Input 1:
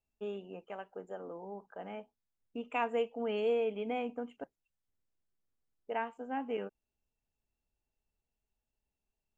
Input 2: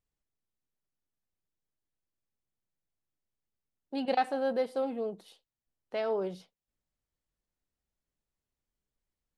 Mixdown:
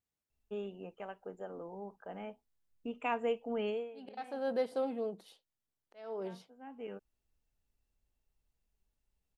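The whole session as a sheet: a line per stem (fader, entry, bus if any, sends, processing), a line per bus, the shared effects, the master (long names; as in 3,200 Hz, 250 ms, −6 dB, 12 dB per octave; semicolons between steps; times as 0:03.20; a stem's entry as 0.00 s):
−1.5 dB, 0.30 s, no send, low-shelf EQ 110 Hz +10.5 dB; automatic ducking −19 dB, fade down 0.25 s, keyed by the second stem
−2.5 dB, 0.00 s, no send, high-pass filter 82 Hz; volume swells 488 ms; pitch vibrato 1 Hz 12 cents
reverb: not used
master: no processing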